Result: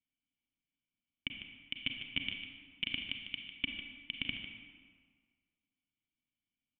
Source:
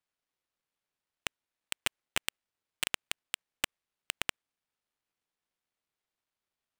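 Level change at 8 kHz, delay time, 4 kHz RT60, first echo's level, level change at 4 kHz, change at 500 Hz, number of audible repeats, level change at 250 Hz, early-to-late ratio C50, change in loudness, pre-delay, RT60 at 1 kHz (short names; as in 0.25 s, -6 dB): under -40 dB, 0.15 s, 1.1 s, -10.0 dB, +0.5 dB, -14.0 dB, 1, +5.0 dB, 3.5 dB, -3.0 dB, 32 ms, 1.8 s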